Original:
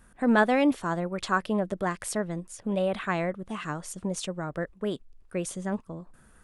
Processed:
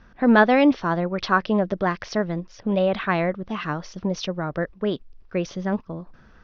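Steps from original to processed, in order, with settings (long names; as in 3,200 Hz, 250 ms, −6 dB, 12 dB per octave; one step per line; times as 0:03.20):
Butterworth low-pass 5,900 Hz 96 dB per octave
level +6 dB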